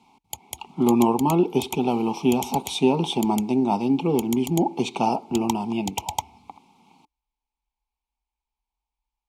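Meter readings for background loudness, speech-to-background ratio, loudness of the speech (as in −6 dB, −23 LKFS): −36.0 LKFS, 13.0 dB, −23.0 LKFS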